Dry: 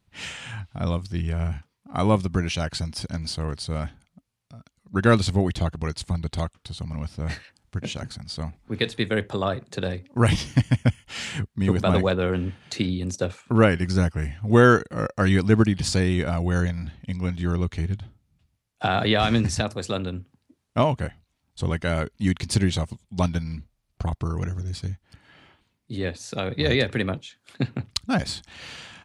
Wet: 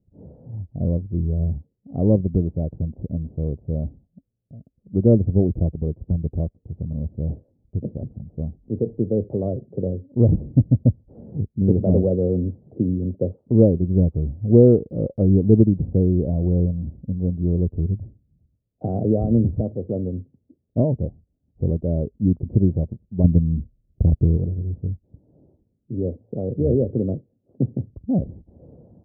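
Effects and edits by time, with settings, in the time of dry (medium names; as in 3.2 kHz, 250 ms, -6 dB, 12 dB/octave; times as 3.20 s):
23.24–24.37 s: tilt shelf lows +7 dB, about 730 Hz
whole clip: steep low-pass 560 Hz 36 dB/octave; trim +4 dB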